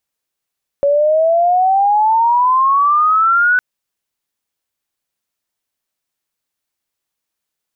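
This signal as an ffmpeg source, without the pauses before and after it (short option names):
-f lavfi -i "aevalsrc='pow(10,(-9.5+0.5*t/2.76)/20)*sin(2*PI*560*2.76/log(1500/560)*(exp(log(1500/560)*t/2.76)-1))':d=2.76:s=44100"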